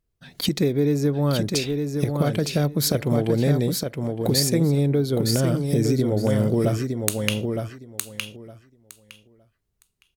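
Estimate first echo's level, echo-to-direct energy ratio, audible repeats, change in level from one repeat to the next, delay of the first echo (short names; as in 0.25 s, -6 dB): -5.0 dB, -5.0 dB, 2, -15.5 dB, 0.912 s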